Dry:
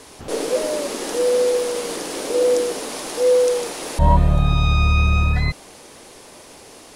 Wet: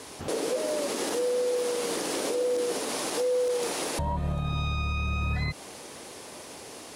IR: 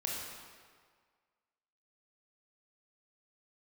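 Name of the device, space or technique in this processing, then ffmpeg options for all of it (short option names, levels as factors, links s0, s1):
podcast mastering chain: -af "highpass=73,deesser=0.5,acompressor=threshold=0.0794:ratio=6,alimiter=limit=0.1:level=0:latency=1:release=64" -ar 44100 -c:a libmp3lame -b:a 128k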